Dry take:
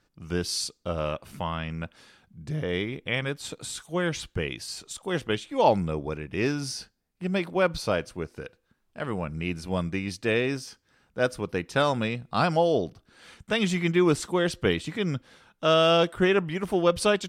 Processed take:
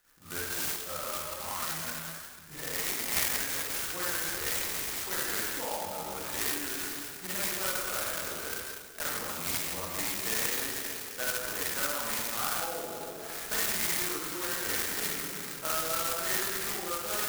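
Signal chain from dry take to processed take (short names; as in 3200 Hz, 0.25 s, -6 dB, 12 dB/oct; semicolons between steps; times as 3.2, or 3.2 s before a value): thin delay 0.14 s, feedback 71%, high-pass 3100 Hz, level -18 dB; reverb RT60 1.5 s, pre-delay 37 ms, DRR -12 dB; 0.76–3.17 flange 1.3 Hz, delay 3.7 ms, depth 4.7 ms, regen +44%; graphic EQ 125/250/500/1000/2000/4000/8000 Hz -12/-3/-5/-4/+9/-12/-9 dB; compressor 4:1, threshold -30 dBFS, peak gain reduction 18 dB; tilt shelf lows -8 dB, about 860 Hz; clock jitter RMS 0.12 ms; gain -4 dB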